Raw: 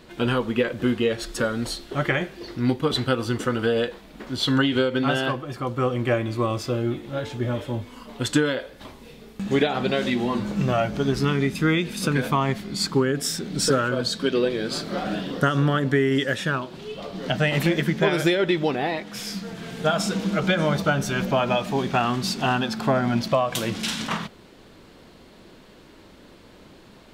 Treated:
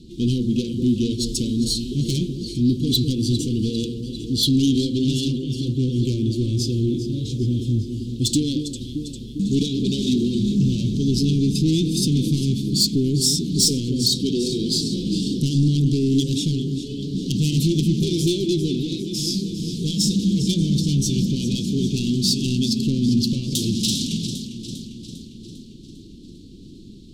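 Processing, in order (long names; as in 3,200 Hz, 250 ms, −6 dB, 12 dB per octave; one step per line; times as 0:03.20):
high-frequency loss of the air 56 metres
on a send: delay that swaps between a low-pass and a high-pass 200 ms, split 970 Hz, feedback 79%, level −9.5 dB
on the sum: soft clipping −20.5 dBFS, distortion −11 dB
inverse Chebyshev band-stop filter 640–1,900 Hz, stop band 50 dB
high-shelf EQ 5,800 Hz +9 dB
one half of a high-frequency compander decoder only
level +8.5 dB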